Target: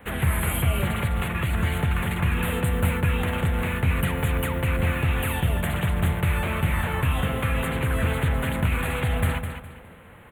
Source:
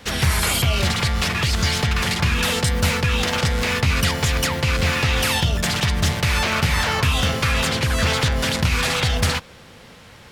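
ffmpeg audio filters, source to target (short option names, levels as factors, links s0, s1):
-filter_complex "[0:a]acrossover=split=460|3000[s0][s1][s2];[s1]acompressor=threshold=0.0501:ratio=6[s3];[s0][s3][s2]amix=inputs=3:normalize=0,asuperstop=centerf=5300:order=4:qfactor=0.65,asplit=2[s4][s5];[s5]aecho=0:1:206|412|618|824:0.398|0.119|0.0358|0.0107[s6];[s4][s6]amix=inputs=2:normalize=0,volume=0.708"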